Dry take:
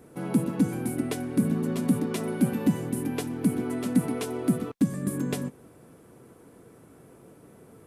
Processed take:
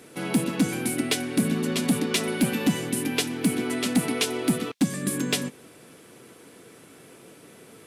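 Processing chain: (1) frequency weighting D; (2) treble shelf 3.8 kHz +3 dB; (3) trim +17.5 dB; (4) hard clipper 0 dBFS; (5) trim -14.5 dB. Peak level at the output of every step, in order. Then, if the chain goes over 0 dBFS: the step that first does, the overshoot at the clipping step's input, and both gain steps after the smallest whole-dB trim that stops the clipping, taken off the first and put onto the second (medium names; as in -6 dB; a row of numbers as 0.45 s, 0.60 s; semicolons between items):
-12.0 dBFS, -11.5 dBFS, +6.0 dBFS, 0.0 dBFS, -14.5 dBFS; step 3, 6.0 dB; step 3 +11.5 dB, step 5 -8.5 dB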